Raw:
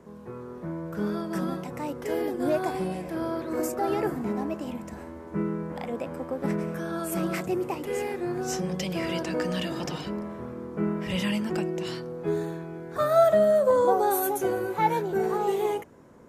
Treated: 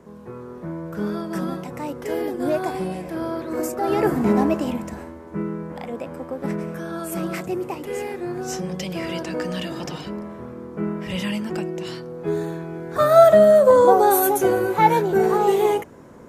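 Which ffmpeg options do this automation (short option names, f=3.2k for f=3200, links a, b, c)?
-af "volume=18.5dB,afade=t=in:st=3.81:d=0.56:silence=0.354813,afade=t=out:st=4.37:d=0.81:silence=0.298538,afade=t=in:st=12.07:d=1.11:silence=0.473151"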